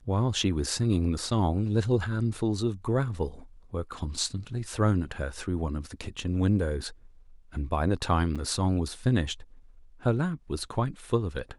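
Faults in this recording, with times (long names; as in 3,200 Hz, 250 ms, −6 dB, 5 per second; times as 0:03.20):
0:08.35–0:08.36: drop-out 6.1 ms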